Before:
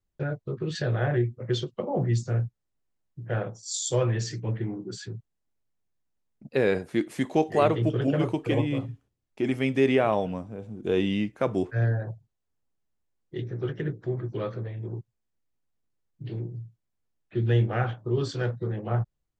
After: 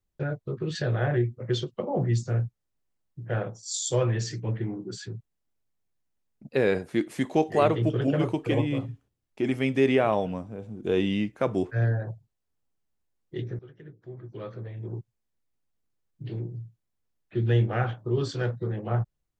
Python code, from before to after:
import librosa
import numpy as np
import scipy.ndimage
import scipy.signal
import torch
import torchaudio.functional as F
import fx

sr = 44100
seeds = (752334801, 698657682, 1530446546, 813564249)

y = fx.edit(x, sr, fx.fade_in_from(start_s=13.59, length_s=1.37, curve='qua', floor_db=-18.5), tone=tone)